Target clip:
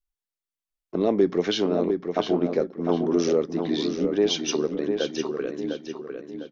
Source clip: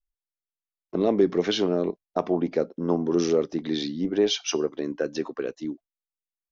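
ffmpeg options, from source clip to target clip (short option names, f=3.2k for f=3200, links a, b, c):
-filter_complex "[0:a]asplit=2[a][b];[b]adelay=703,lowpass=f=4.2k:p=1,volume=-6dB,asplit=2[c][d];[d]adelay=703,lowpass=f=4.2k:p=1,volume=0.41,asplit=2[e][f];[f]adelay=703,lowpass=f=4.2k:p=1,volume=0.41,asplit=2[g][h];[h]adelay=703,lowpass=f=4.2k:p=1,volume=0.41,asplit=2[i][j];[j]adelay=703,lowpass=f=4.2k:p=1,volume=0.41[k];[a][c][e][g][i][k]amix=inputs=6:normalize=0"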